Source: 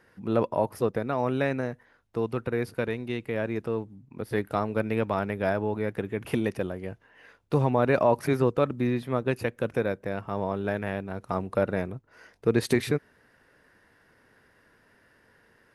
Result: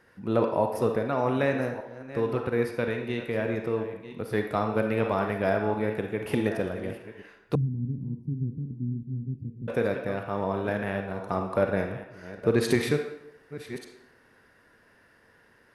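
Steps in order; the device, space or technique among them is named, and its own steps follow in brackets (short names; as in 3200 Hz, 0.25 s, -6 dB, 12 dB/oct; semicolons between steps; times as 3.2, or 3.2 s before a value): reverse delay 0.602 s, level -13.5 dB; filtered reverb send (on a send: HPF 340 Hz 12 dB/oct + LPF 8800 Hz 12 dB/oct + reverb RT60 0.80 s, pre-delay 33 ms, DRR 4 dB); 7.55–9.68 on the sum: inverse Chebyshev low-pass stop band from 560 Hz, stop band 50 dB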